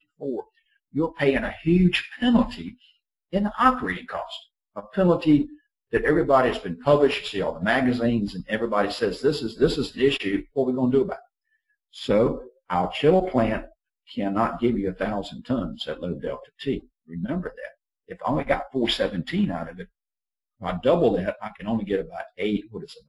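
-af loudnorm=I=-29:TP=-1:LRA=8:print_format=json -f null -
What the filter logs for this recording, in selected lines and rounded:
"input_i" : "-24.4",
"input_tp" : "-4.6",
"input_lra" : "5.4",
"input_thresh" : "-35.1",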